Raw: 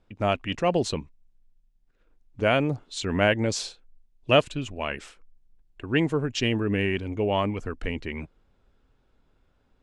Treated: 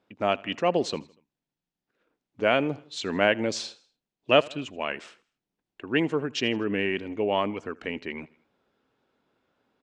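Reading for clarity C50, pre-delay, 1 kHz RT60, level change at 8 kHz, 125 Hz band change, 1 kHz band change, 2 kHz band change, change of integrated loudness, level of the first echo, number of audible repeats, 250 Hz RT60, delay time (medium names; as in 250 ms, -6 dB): no reverb, no reverb, no reverb, -4.0 dB, -9.0 dB, 0.0 dB, 0.0 dB, -1.0 dB, -23.5 dB, 3, no reverb, 80 ms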